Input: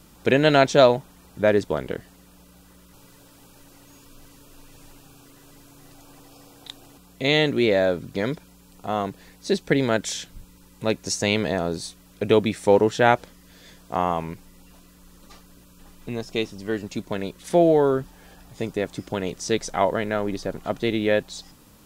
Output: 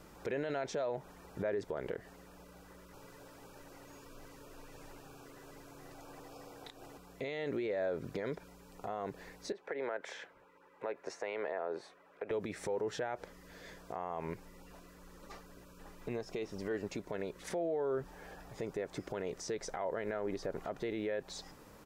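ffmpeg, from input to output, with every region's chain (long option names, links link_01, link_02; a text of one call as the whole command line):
ffmpeg -i in.wav -filter_complex "[0:a]asettb=1/sr,asplit=3[link_01][link_02][link_03];[link_01]atrim=end=9.524[link_04];[link_02]atrim=start=9.52:end=12.31,asetpts=PTS-STARTPTS,afade=type=in:duration=0.004:curve=qsin,afade=type=out:start_time=2.786:duration=0.004:curve=qsin,highpass=frequency=290:poles=1,acrossover=split=380 2500:gain=0.224 1 0.1[link_05][link_06][link_07];[link_05][link_06][link_07]amix=inputs=3:normalize=0,acompressor=threshold=-33dB:ratio=5:attack=3.2:release=140:knee=1:detection=peak[link_08];[link_03]atrim=start=12.306[link_09];[link_04][link_08]acrossfade=duration=0.004:curve1=hsin:curve2=qsin[link_10];[link_10][link_09]acrossfade=duration=0.004:curve1=qsin:curve2=hsin,firequalizer=gain_entry='entry(260,0);entry(400,8);entry(1200,4);entry(5300,7);entry(9300,2)':delay=0.05:min_phase=1,alimiter=limit=-22dB:level=0:latency=1:release=131,highshelf=frequency=2500:width_type=q:width=1.5:gain=-6.5,volume=-6dB" out.wav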